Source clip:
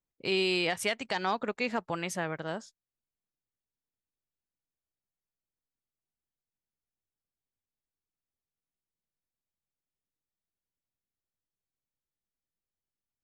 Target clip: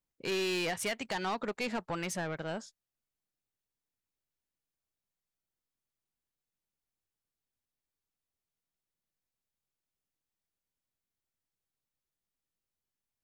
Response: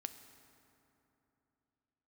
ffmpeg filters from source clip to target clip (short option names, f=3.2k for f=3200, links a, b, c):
-af "asoftclip=type=tanh:threshold=-29.5dB,volume=1dB"